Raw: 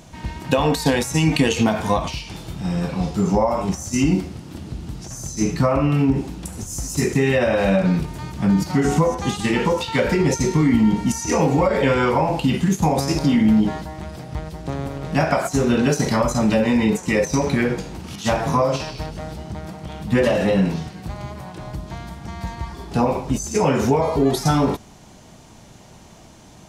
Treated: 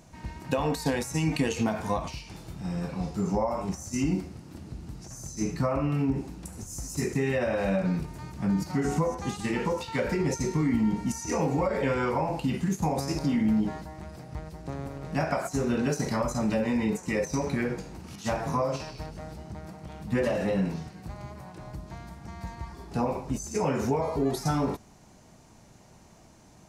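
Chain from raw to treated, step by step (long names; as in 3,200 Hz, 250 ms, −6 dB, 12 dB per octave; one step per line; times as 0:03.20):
parametric band 3,300 Hz −6.5 dB 0.45 octaves
level −9 dB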